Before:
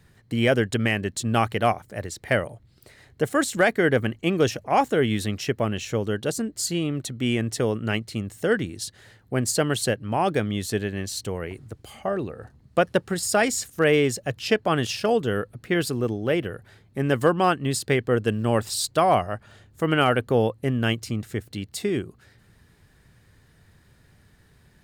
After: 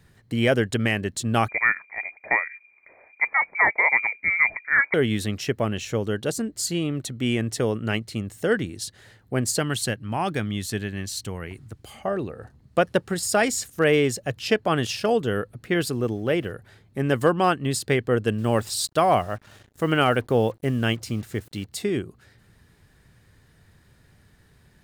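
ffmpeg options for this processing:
-filter_complex "[0:a]asettb=1/sr,asplit=3[a][b][c];[a]atrim=end=1.484[d];[b]atrim=start=1.48:end=4.94,asetpts=PTS-STARTPTS,afade=t=in:d=0.004:c=qsin,afade=t=out:st=3.456:d=0.004:c=qsin,lowpass=f=2.1k:t=q:w=0.5098,lowpass=f=2.1k:t=q:w=0.6013,lowpass=f=2.1k:t=q:w=0.9,lowpass=f=2.1k:t=q:w=2.563,afreqshift=-2500[e];[c]atrim=start=4.936[f];[d][e]acrossfade=d=0.004:c1=hsin:c2=qsin[g];[g][f]acrossfade=d=0.004:c1=qsin:c2=hsin,asettb=1/sr,asplit=3[h][i][j];[h]atrim=end=9.594[k];[i]atrim=start=9.59:end=11.82,asetpts=PTS-STARTPTS,afade=t=in:d=0.004:c=qsin,afade=t=out:st=2.226:d=0.004:c=qsin,equalizer=f=500:t=o:w=1.2:g=-7[l];[j]atrim=start=11.816[m];[k][l]acrossfade=d=0.004:c1=hsin:c2=qsin[n];[n][m]acrossfade=d=0.004:c1=qsin:c2=hsin,asettb=1/sr,asplit=3[o][p][q];[o]atrim=end=15.944[r];[p]atrim=start=15.94:end=16.52,asetpts=PTS-STARTPTS,afade=t=in:d=0.004:c=qsin,afade=t=out:st=0.576:d=0.004:c=qsin,aeval=exprs='val(0)*gte(abs(val(0)),0.00299)':c=same[s];[q]atrim=start=16.516[t];[r][s]acrossfade=d=0.004:c1=hsin:c2=qsin[u];[u][t]acrossfade=d=0.004:c1=qsin:c2=hsin,asettb=1/sr,asplit=3[v][w][x];[v]atrim=end=18.384[y];[w]atrim=start=18.38:end=21.66,asetpts=PTS-STARTPTS,afade=t=in:d=0.004:c=qsin,afade=t=out:st=3.276:d=0.004:c=qsin,acrusher=bits=7:mix=0:aa=0.5[z];[x]atrim=start=21.656[aa];[y][z]acrossfade=d=0.004:c1=hsin:c2=qsin[ab];[ab][aa]acrossfade=d=0.004:c1=qsin:c2=hsin"

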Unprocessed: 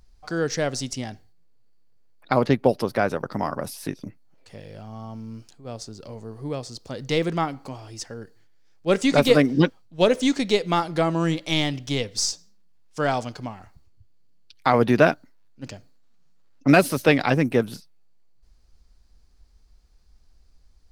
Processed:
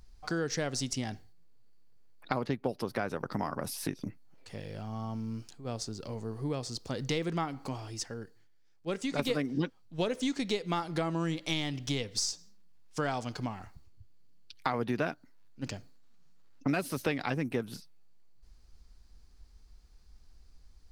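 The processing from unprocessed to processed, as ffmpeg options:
-filter_complex "[0:a]asplit=2[a][b];[a]atrim=end=9.19,asetpts=PTS-STARTPTS,afade=t=out:st=7.76:d=1.43:c=qua:silence=0.316228[c];[b]atrim=start=9.19,asetpts=PTS-STARTPTS,afade=t=in:d=0.004:c=hsin:silence=0.316228[d];[c][d]concat=n=2:v=0:a=1,equalizer=f=590:w=2.7:g=-3.5,acompressor=threshold=-30dB:ratio=4"

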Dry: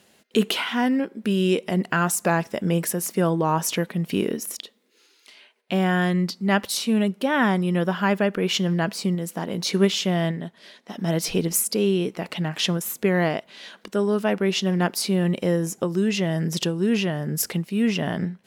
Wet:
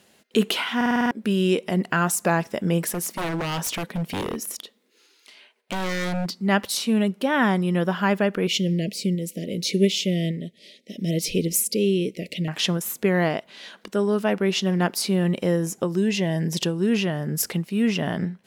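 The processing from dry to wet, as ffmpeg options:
-filter_complex "[0:a]asettb=1/sr,asplit=3[a][b][c];[a]atrim=end=2.884[d];[b]atrim=start=2.88:end=6.31,asetpts=PTS-STARTPTS,afade=t=in:d=0.004:c=qsin,afade=t=out:st=3.426:d=0.004:c=qsin,aeval=exprs='0.0841*(abs(mod(val(0)/0.0841+3,4)-2)-1)':c=same[e];[c]atrim=start=6.306[f];[d][e]acrossfade=d=0.004:c1=hsin:c2=qsin[g];[g][f]acrossfade=d=0.004:c1=qsin:c2=hsin,asettb=1/sr,asplit=3[h][i][j];[h]atrim=end=8.474[k];[i]atrim=start=8.47:end=12.48,asetpts=PTS-STARTPTS,afade=t=in:d=0.004:c=qsin,afade=t=out:st=4.006:d=0.004:c=qsin,asuperstop=centerf=1100:order=12:qfactor=0.77[l];[j]atrim=start=12.476[m];[k][l]acrossfade=d=0.004:c1=hsin:c2=qsin[n];[n][m]acrossfade=d=0.004:c1=qsin:c2=hsin,asettb=1/sr,asplit=3[o][p][q];[o]atrim=end=15.974[r];[p]atrim=start=15.97:end=16.63,asetpts=PTS-STARTPTS,afade=t=in:d=0.004:c=qsin,afade=t=out:st=0.656:d=0.004:c=qsin,asuperstop=centerf=1300:order=4:qfactor=3.4[s];[q]atrim=start=16.626[t];[r][s]acrossfade=d=0.004:c1=hsin:c2=qsin[u];[u][t]acrossfade=d=0.004:c1=qsin:c2=hsin,asplit=8[v][w][x][y][z][aa][ab][ac];[v]atrim=end=0.812[ad];[w]atrim=start=0.758:end=0.812[ae];[x]atrim=start=0.758:end=0.812[af];[y]atrim=start=0.758:end=0.812[ag];[z]atrim=start=0.758:end=0.812[ah];[aa]atrim=start=0.758:end=0.812[ai];[ab]atrim=start=0.758:end=0.812[aj];[ac]atrim=start=1.108[ak];[ad][ae]acrossfade=d=0.004:c1=hsin:c2=hsin[al];[al][af]acrossfade=d=0.004:c1=hsin:c2=hsin[am];[am][ag]acrossfade=d=0.004:c1=hsin:c2=hsin[an];[an][ah]acrossfade=d=0.004:c1=hsin:c2=hsin[ao];[ao][ai]acrossfade=d=0.004:c1=hsin:c2=hsin[ap];[ap][aj]acrossfade=d=0.004:c1=hsin:c2=hsin[aq];[aq][ak]acrossfade=d=0.004:c1=hsin:c2=hsin"

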